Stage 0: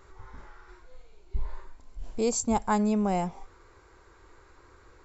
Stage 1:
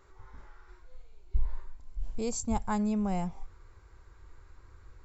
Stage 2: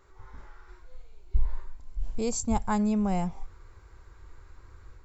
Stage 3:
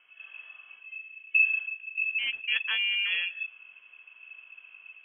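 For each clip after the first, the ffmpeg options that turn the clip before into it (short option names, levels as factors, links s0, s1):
-af "asubboost=boost=4.5:cutoff=170,volume=0.501"
-af "dynaudnorm=f=110:g=3:m=1.5"
-af "aeval=exprs='val(0)*sin(2*PI*790*n/s)':c=same,lowpass=f=2900:t=q:w=0.5098,lowpass=f=2900:t=q:w=0.6013,lowpass=f=2900:t=q:w=0.9,lowpass=f=2900:t=q:w=2.563,afreqshift=-3400"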